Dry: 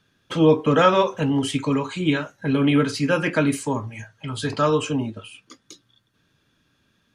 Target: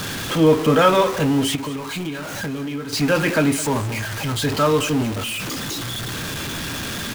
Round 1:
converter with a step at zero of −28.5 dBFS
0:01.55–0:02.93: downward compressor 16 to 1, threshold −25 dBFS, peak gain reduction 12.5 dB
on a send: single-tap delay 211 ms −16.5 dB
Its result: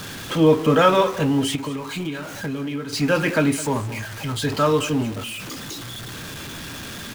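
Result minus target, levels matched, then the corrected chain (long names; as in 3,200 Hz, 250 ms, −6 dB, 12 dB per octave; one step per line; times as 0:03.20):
converter with a step at zero: distortion −5 dB
converter with a step at zero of −22 dBFS
0:01.55–0:02.93: downward compressor 16 to 1, threshold −25 dBFS, peak gain reduction 13.5 dB
on a send: single-tap delay 211 ms −16.5 dB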